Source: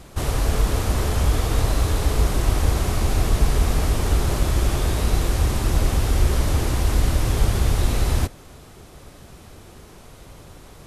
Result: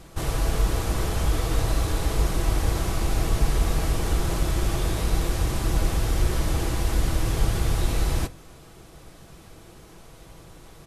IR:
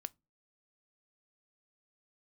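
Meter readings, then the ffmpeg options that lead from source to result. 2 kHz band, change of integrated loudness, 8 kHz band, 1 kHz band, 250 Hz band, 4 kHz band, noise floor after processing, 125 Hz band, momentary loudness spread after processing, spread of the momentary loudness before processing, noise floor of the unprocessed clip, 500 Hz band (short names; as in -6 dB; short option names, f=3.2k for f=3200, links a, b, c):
-3.0 dB, -4.0 dB, -3.0 dB, -3.0 dB, -3.0 dB, -3.0 dB, -48 dBFS, -4.5 dB, 2 LU, 2 LU, -45 dBFS, -3.0 dB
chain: -filter_complex "[0:a]aecho=1:1:6.1:0.33[a];[1:a]atrim=start_sample=2205[b];[a][b]afir=irnorm=-1:irlink=0"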